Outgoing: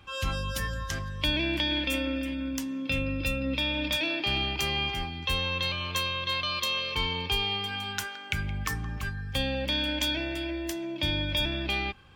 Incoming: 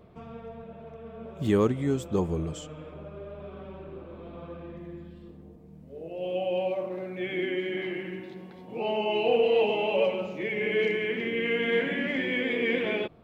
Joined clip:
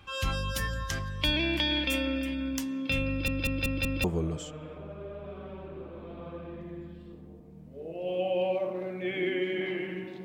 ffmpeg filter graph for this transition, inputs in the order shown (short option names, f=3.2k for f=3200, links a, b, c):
-filter_complex "[0:a]apad=whole_dur=10.24,atrim=end=10.24,asplit=5[a][b][c][d][e];[a]atrim=end=3.282[f];[b]atrim=start=3.088:end=3.282[g];[c]atrim=start=3.088:end=3.282[h];[d]atrim=start=3.088:end=3.282[i];[e]atrim=start=3.088:end=3.282[j];[1:a]atrim=start=2.198:end=8.4[k];[f][g]acrossfade=d=0.004:c1=hsin:c2=hsin[l];[l][h]acrossfade=d=0.004:c1=hsin:c2=hsin[m];[m][i]acrossfade=d=0.004:c1=hsin:c2=hsin[n];[n][j]acrossfade=d=0.004:c1=hsin:c2=hsin[o];[o][k]acrossfade=d=0.004:c1=hsin:c2=hsin"